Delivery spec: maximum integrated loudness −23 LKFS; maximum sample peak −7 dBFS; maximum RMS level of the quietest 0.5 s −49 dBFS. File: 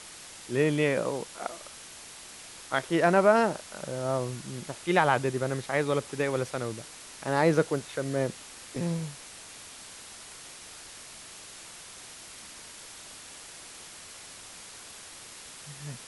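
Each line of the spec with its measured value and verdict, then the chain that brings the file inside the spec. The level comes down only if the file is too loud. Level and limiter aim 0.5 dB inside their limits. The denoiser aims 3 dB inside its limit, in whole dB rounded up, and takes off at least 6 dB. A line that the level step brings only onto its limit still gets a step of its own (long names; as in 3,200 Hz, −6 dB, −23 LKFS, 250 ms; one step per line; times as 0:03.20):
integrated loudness −28.5 LKFS: in spec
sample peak −9.0 dBFS: in spec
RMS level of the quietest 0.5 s −46 dBFS: out of spec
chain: broadband denoise 6 dB, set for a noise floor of −46 dBFS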